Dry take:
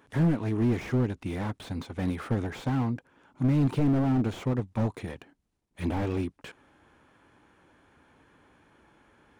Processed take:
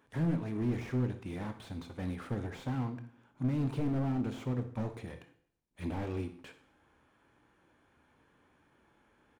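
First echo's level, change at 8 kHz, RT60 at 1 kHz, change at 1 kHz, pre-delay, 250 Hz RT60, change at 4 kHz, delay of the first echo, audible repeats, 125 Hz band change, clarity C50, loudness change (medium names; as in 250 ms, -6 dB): -16.0 dB, no reading, 0.60 s, -7.5 dB, 18 ms, 0.60 s, -7.5 dB, 65 ms, 1, -7.0 dB, 10.5 dB, -7.0 dB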